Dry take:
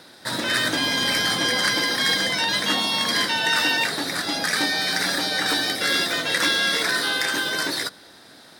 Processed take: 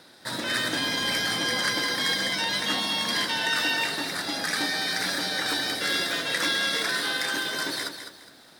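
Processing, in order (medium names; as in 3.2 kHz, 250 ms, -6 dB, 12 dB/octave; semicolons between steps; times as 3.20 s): bit-crushed delay 206 ms, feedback 35%, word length 8-bit, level -8.5 dB; trim -5 dB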